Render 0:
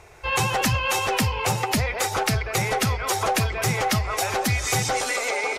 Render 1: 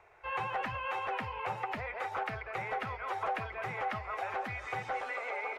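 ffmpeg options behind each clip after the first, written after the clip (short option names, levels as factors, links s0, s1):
-filter_complex "[0:a]acrossover=split=500 2600:gain=0.224 1 0.1[s0][s1][s2];[s0][s1][s2]amix=inputs=3:normalize=0,acrossover=split=3500[s3][s4];[s4]acompressor=threshold=0.00224:ratio=4:attack=1:release=60[s5];[s3][s5]amix=inputs=2:normalize=0,volume=0.376"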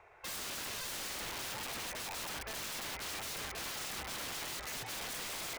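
-af "aeval=exprs='(mod(75*val(0)+1,2)-1)/75':c=same,volume=1.12"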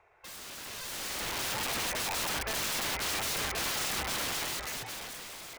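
-af "dynaudnorm=f=200:g=11:m=4.47,volume=0.596"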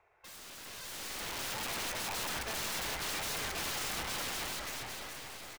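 -filter_complex "[0:a]aeval=exprs='0.0422*(cos(1*acos(clip(val(0)/0.0422,-1,1)))-cos(1*PI/2))+0.00168*(cos(8*acos(clip(val(0)/0.0422,-1,1)))-cos(8*PI/2))':c=same,asplit=2[s0][s1];[s1]adelay=419,lowpass=f=4900:p=1,volume=0.501,asplit=2[s2][s3];[s3]adelay=419,lowpass=f=4900:p=1,volume=0.53,asplit=2[s4][s5];[s5]adelay=419,lowpass=f=4900:p=1,volume=0.53,asplit=2[s6][s7];[s7]adelay=419,lowpass=f=4900:p=1,volume=0.53,asplit=2[s8][s9];[s9]adelay=419,lowpass=f=4900:p=1,volume=0.53,asplit=2[s10][s11];[s11]adelay=419,lowpass=f=4900:p=1,volume=0.53,asplit=2[s12][s13];[s13]adelay=419,lowpass=f=4900:p=1,volume=0.53[s14];[s2][s4][s6][s8][s10][s12][s14]amix=inputs=7:normalize=0[s15];[s0][s15]amix=inputs=2:normalize=0,volume=0.562"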